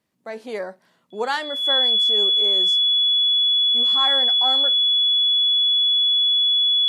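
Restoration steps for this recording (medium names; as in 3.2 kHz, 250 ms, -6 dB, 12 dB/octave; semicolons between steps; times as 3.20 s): band-stop 3.4 kHz, Q 30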